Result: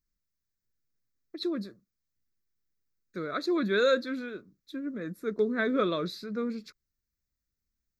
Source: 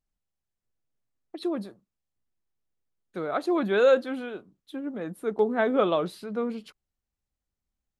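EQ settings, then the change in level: dynamic bell 3.8 kHz, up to +7 dB, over -54 dBFS, Q 2.7; treble shelf 5.7 kHz +8 dB; static phaser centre 3 kHz, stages 6; 0.0 dB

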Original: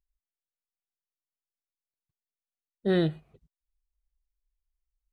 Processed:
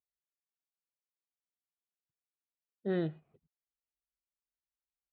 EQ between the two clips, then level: band-pass 130–4000 Hz; distance through air 240 m; -7.0 dB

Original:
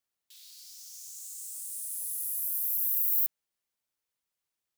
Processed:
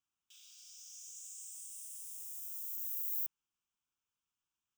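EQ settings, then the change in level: treble shelf 8.2 kHz -7.5 dB; static phaser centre 2.9 kHz, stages 8; 0.0 dB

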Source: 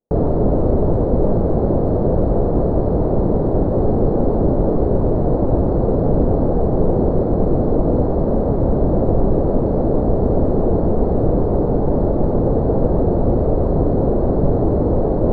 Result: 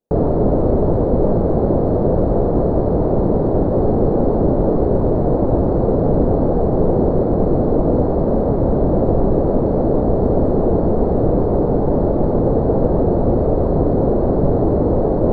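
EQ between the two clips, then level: bass shelf 120 Hz -4 dB; +2.0 dB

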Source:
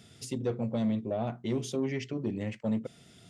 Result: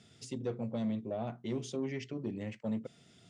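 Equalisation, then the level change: high-pass 81 Hz; low-pass 8.7 kHz 24 dB/octave; -5.0 dB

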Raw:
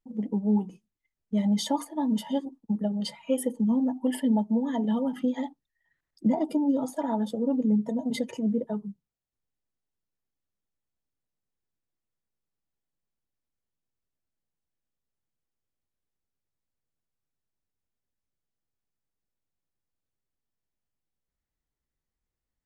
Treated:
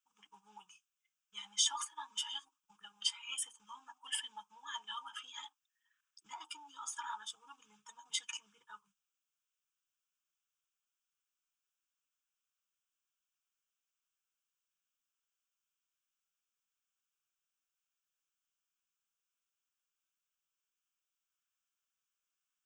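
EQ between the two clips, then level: inverse Chebyshev high-pass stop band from 620 Hz, stop band 40 dB; static phaser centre 2.9 kHz, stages 8; +6.5 dB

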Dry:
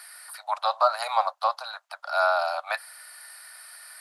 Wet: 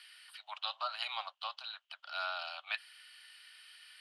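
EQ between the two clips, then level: band-pass filter 3 kHz, Q 8.4; +9.0 dB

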